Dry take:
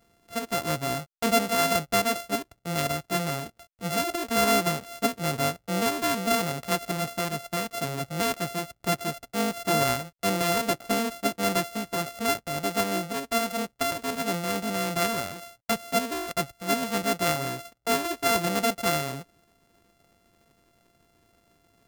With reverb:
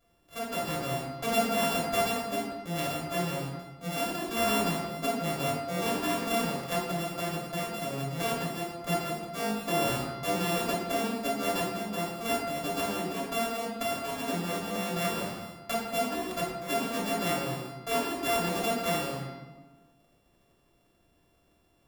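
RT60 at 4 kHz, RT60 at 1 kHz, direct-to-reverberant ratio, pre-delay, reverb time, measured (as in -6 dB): 0.80 s, 1.2 s, -4.5 dB, 3 ms, 1.3 s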